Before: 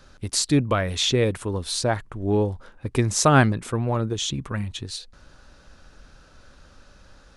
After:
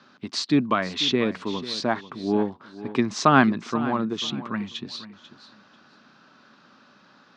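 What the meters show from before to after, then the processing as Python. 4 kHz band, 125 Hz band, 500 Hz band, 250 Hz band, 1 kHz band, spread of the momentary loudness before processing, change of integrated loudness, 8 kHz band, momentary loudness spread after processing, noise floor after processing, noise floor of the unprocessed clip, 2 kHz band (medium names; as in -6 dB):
-1.0 dB, -9.5 dB, -2.5 dB, +2.0 dB, +2.0 dB, 12 LU, -1.0 dB, -11.5 dB, 14 LU, -56 dBFS, -53 dBFS, +0.5 dB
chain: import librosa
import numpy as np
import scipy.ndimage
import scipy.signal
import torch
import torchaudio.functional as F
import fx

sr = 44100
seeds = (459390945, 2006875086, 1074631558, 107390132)

y = fx.cabinet(x, sr, low_hz=170.0, low_slope=24, high_hz=4900.0, hz=(230.0, 510.0, 1100.0), db=(5, -8, 5))
y = fx.echo_feedback(y, sr, ms=492, feedback_pct=22, wet_db=-15.0)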